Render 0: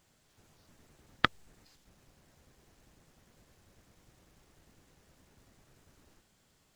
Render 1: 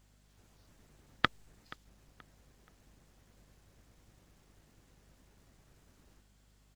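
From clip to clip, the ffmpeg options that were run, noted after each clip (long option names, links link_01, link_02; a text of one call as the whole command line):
ffmpeg -i in.wav -filter_complex "[0:a]aeval=exprs='val(0)+0.000631*(sin(2*PI*50*n/s)+sin(2*PI*2*50*n/s)/2+sin(2*PI*3*50*n/s)/3+sin(2*PI*4*50*n/s)/4+sin(2*PI*5*50*n/s)/5)':channel_layout=same,asplit=2[link_01][link_02];[link_02]adelay=478,lowpass=frequency=4200:poles=1,volume=-20dB,asplit=2[link_03][link_04];[link_04]adelay=478,lowpass=frequency=4200:poles=1,volume=0.36,asplit=2[link_05][link_06];[link_06]adelay=478,lowpass=frequency=4200:poles=1,volume=0.36[link_07];[link_01][link_03][link_05][link_07]amix=inputs=4:normalize=0,volume=-2dB" out.wav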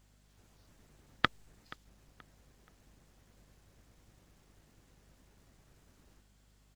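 ffmpeg -i in.wav -af anull out.wav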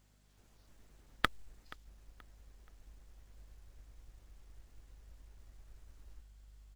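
ffmpeg -i in.wav -af "acrusher=bits=4:mode=log:mix=0:aa=0.000001,asubboost=boost=10.5:cutoff=52,volume=-2.5dB" out.wav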